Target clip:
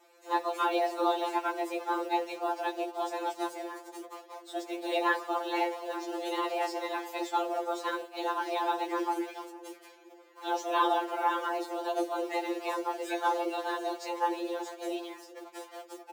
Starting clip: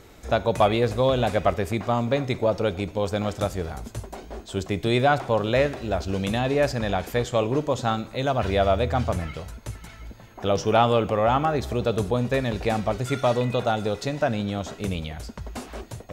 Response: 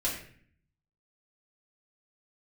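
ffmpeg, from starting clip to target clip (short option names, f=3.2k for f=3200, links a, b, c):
-filter_complex "[0:a]highpass=f=83:w=0.5412,highpass=f=83:w=1.3066,asplit=2[a][b];[b]acrusher=bits=5:mix=0:aa=0.000001,volume=-6dB[c];[a][c]amix=inputs=2:normalize=0,asplit=2[d][e];[e]adelay=446,lowpass=f=870:p=1,volume=-16dB,asplit=2[f][g];[g]adelay=446,lowpass=f=870:p=1,volume=0.44,asplit=2[h][i];[i]adelay=446,lowpass=f=870:p=1,volume=0.44,asplit=2[j][k];[k]adelay=446,lowpass=f=870:p=1,volume=0.44[l];[d][f][h][j][l]amix=inputs=5:normalize=0,acrossover=split=140|900[m][n][o];[m]acrusher=samples=16:mix=1:aa=0.000001[p];[p][n][o]amix=inputs=3:normalize=0,afftfilt=real='hypot(re,im)*cos(2*PI*random(0))':imag='hypot(re,im)*sin(2*PI*random(1))':win_size=512:overlap=0.75,afreqshift=250,afftfilt=real='re*2.83*eq(mod(b,8),0)':imag='im*2.83*eq(mod(b,8),0)':win_size=2048:overlap=0.75,volume=-3.5dB"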